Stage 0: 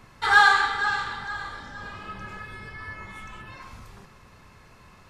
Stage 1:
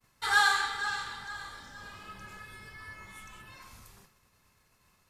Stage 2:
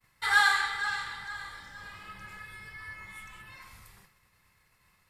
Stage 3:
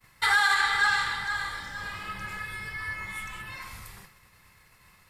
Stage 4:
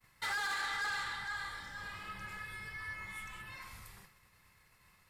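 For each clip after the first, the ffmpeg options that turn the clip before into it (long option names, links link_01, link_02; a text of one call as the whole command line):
ffmpeg -i in.wav -af "aemphasis=mode=production:type=75fm,agate=range=-33dB:threshold=-43dB:ratio=3:detection=peak,volume=-9dB" out.wav
ffmpeg -i in.wav -af "equalizer=frequency=250:width_type=o:width=0.33:gain=-8,equalizer=frequency=400:width_type=o:width=0.33:gain=-5,equalizer=frequency=630:width_type=o:width=0.33:gain=-4,equalizer=frequency=2000:width_type=o:width=0.33:gain=8,equalizer=frequency=6300:width_type=o:width=0.33:gain=-6" out.wav
ffmpeg -i in.wav -af "alimiter=limit=-22.5dB:level=0:latency=1:release=114,volume=9dB" out.wav
ffmpeg -i in.wav -af "asoftclip=type=tanh:threshold=-25dB,volume=-8dB" out.wav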